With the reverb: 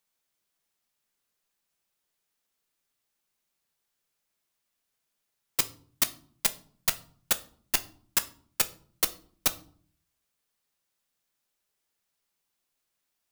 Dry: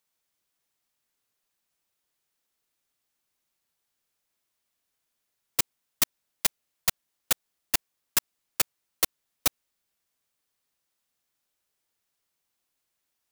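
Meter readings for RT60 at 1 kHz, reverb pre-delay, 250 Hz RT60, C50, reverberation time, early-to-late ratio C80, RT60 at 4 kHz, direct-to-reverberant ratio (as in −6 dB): 0.50 s, 5 ms, 0.75 s, 17.5 dB, 0.50 s, 22.5 dB, 0.35 s, 9.5 dB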